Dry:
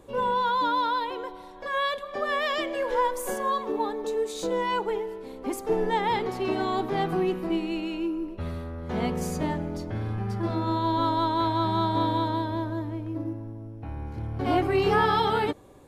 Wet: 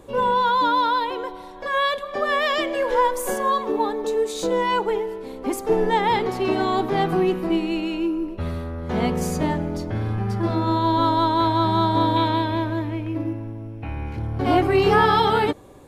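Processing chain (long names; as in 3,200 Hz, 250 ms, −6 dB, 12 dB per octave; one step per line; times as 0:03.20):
0:12.16–0:14.17: parametric band 2,500 Hz +11.5 dB 0.84 octaves
level +5.5 dB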